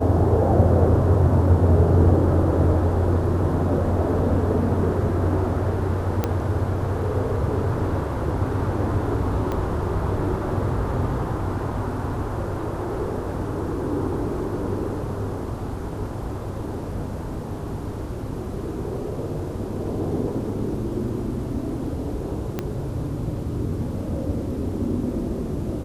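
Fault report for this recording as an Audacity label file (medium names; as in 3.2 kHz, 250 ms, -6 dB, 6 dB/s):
6.240000	6.240000	pop -9 dBFS
9.520000	9.520000	pop -15 dBFS
22.590000	22.590000	pop -12 dBFS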